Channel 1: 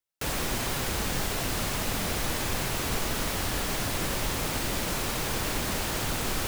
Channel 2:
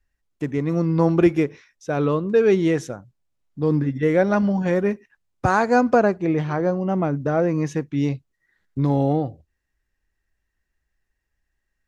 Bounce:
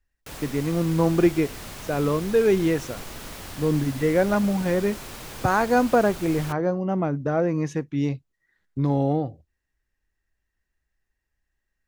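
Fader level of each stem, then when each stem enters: -8.5 dB, -2.5 dB; 0.05 s, 0.00 s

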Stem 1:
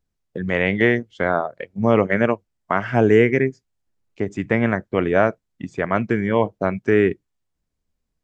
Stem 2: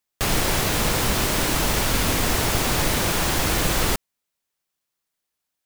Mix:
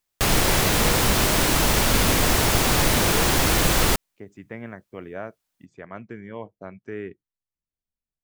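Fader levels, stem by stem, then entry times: -17.5 dB, +2.0 dB; 0.00 s, 0.00 s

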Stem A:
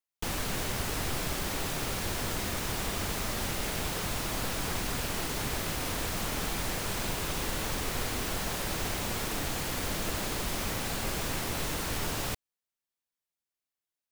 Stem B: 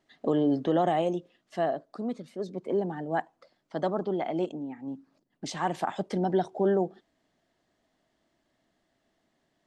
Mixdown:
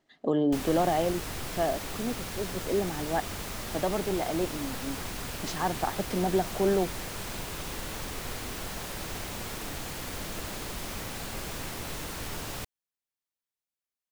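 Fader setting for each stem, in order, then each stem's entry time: -4.0 dB, -0.5 dB; 0.30 s, 0.00 s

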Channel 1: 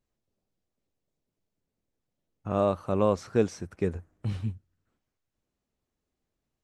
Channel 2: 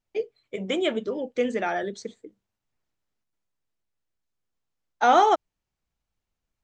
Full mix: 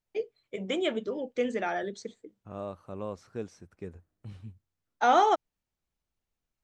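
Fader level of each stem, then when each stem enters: -13.0 dB, -4.0 dB; 0.00 s, 0.00 s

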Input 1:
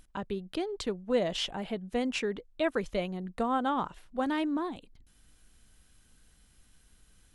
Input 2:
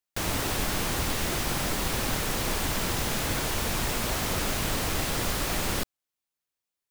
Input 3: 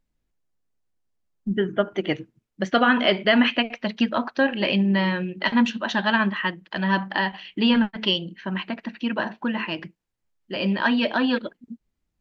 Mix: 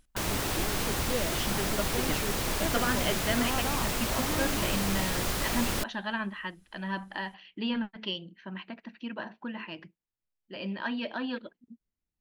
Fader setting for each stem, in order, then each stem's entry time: -6.0 dB, -2.0 dB, -12.0 dB; 0.00 s, 0.00 s, 0.00 s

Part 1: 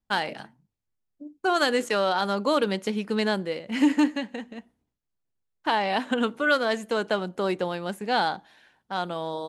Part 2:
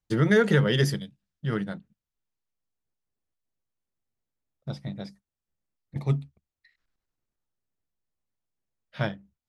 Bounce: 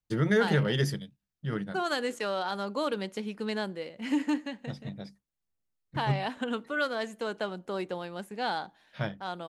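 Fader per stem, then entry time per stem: -7.5 dB, -4.5 dB; 0.30 s, 0.00 s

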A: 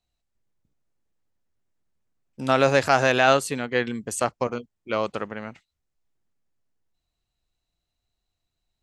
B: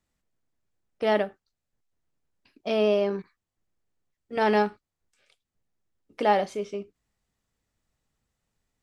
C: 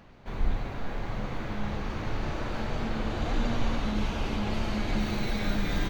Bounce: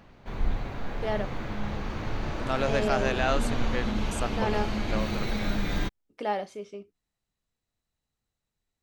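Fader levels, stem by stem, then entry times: -9.5 dB, -7.5 dB, 0.0 dB; 0.00 s, 0.00 s, 0.00 s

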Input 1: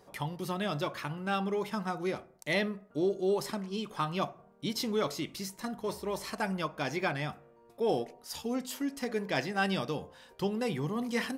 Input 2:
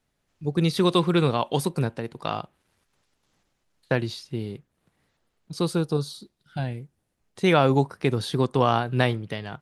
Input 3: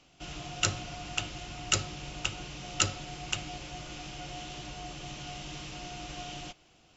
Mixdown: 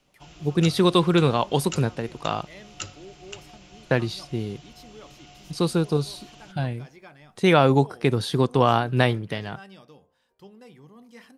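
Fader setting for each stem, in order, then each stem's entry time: -16.0 dB, +2.0 dB, -8.0 dB; 0.00 s, 0.00 s, 0.00 s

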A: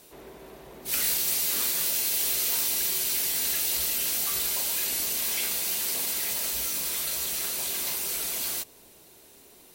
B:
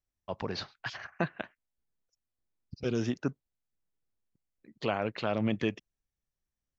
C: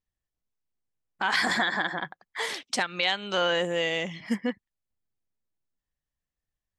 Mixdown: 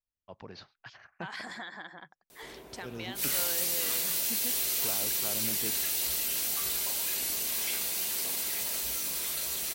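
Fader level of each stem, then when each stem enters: -3.5 dB, -11.0 dB, -16.0 dB; 2.30 s, 0.00 s, 0.00 s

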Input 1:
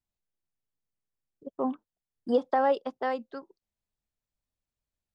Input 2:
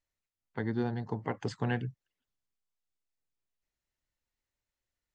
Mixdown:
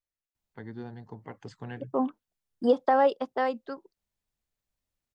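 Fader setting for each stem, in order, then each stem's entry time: +2.5 dB, -8.5 dB; 0.35 s, 0.00 s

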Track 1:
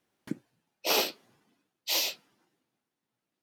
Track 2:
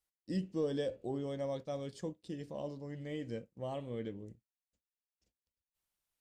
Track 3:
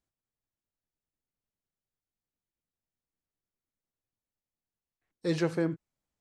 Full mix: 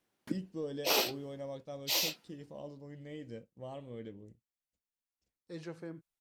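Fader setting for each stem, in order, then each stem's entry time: -3.0 dB, -4.5 dB, -15.5 dB; 0.00 s, 0.00 s, 0.25 s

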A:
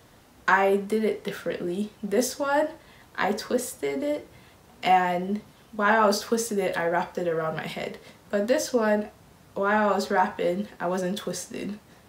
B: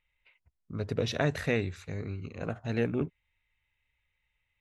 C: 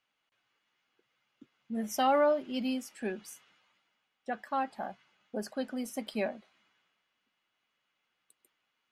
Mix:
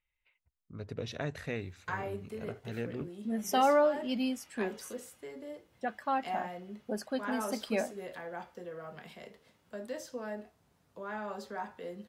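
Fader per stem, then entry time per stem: -17.0 dB, -8.5 dB, +0.5 dB; 1.40 s, 0.00 s, 1.55 s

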